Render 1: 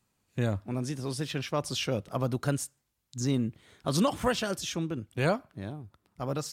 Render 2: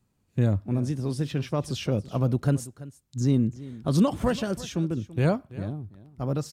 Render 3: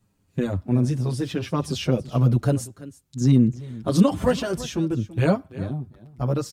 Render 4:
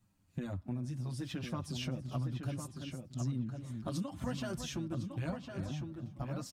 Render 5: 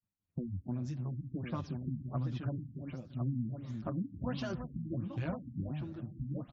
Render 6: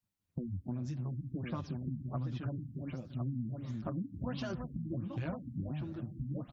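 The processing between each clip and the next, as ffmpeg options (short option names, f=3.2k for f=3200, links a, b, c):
-af "lowshelf=f=490:g=12,aecho=1:1:334:0.133,volume=-4dB"
-filter_complex "[0:a]asplit=2[a][b];[b]adelay=6.9,afreqshift=-0.77[c];[a][c]amix=inputs=2:normalize=1,volume=7dB"
-filter_complex "[0:a]equalizer=f=440:t=o:w=0.39:g=-12,acompressor=threshold=-31dB:ratio=5,asplit=2[a][b];[b]adelay=1056,lowpass=f=3.6k:p=1,volume=-6dB,asplit=2[c][d];[d]adelay=1056,lowpass=f=3.6k:p=1,volume=0.17,asplit=2[e][f];[f]adelay=1056,lowpass=f=3.6k:p=1,volume=0.17[g];[c][e][g]amix=inputs=3:normalize=0[h];[a][h]amix=inputs=2:normalize=0,volume=-5.5dB"
-filter_complex "[0:a]asplit=2[a][b];[b]adelay=285.7,volume=-18dB,highshelf=f=4k:g=-6.43[c];[a][c]amix=inputs=2:normalize=0,agate=range=-33dB:threshold=-59dB:ratio=3:detection=peak,afftfilt=real='re*lt(b*sr/1024,270*pow(7700/270,0.5+0.5*sin(2*PI*1.4*pts/sr)))':imag='im*lt(b*sr/1024,270*pow(7700/270,0.5+0.5*sin(2*PI*1.4*pts/sr)))':win_size=1024:overlap=0.75,volume=1dB"
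-af "acompressor=threshold=-40dB:ratio=2,volume=3dB"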